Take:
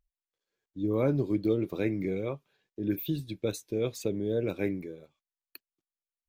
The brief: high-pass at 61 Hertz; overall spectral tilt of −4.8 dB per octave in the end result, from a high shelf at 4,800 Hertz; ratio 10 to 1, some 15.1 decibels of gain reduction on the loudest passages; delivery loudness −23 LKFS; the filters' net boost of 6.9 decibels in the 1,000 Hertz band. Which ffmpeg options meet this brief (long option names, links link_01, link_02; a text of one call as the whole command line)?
ffmpeg -i in.wav -af "highpass=61,equalizer=frequency=1000:width_type=o:gain=8.5,highshelf=frequency=4800:gain=7.5,acompressor=threshold=-36dB:ratio=10,volume=19dB" out.wav